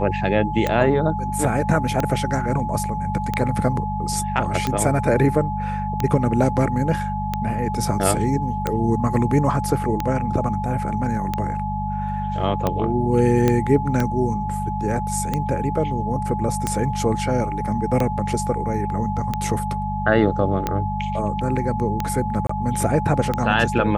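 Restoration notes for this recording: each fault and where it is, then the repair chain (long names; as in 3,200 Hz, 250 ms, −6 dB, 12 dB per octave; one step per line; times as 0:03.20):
mains hum 50 Hz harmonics 4 −27 dBFS
scratch tick 45 rpm −8 dBFS
whistle 850 Hz −26 dBFS
0:13.48: click −6 dBFS
0:22.47–0:22.49: drop-out 24 ms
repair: click removal
hum removal 50 Hz, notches 4
notch filter 850 Hz, Q 30
repair the gap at 0:22.47, 24 ms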